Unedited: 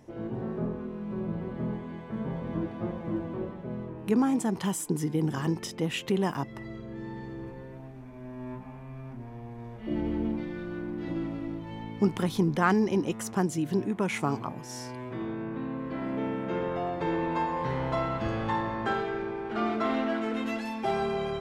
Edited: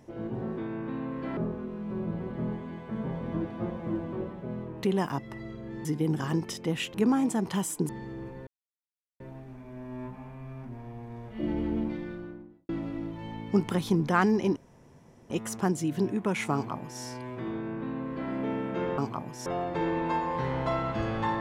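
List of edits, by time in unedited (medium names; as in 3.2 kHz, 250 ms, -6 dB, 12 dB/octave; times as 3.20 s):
4.04–4.99 s: swap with 6.08–7.10 s
7.68 s: insert silence 0.73 s
10.39–11.17 s: studio fade out
13.04 s: insert room tone 0.74 s
14.28–14.76 s: copy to 16.72 s
15.26–16.05 s: copy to 0.58 s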